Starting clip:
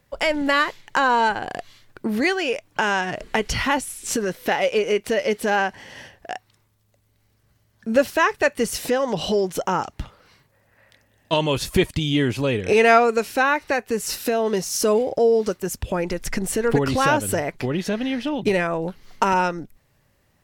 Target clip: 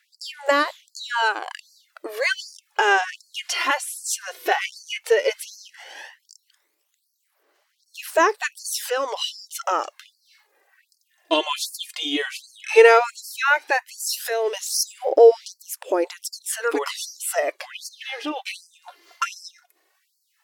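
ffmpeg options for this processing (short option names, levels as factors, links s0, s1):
-af "aphaser=in_gain=1:out_gain=1:delay=2.9:decay=0.56:speed=0.13:type=sinusoidal,afftfilt=real='re*gte(b*sr/1024,260*pow(4300/260,0.5+0.5*sin(2*PI*1.3*pts/sr)))':imag='im*gte(b*sr/1024,260*pow(4300/260,0.5+0.5*sin(2*PI*1.3*pts/sr)))':win_size=1024:overlap=0.75"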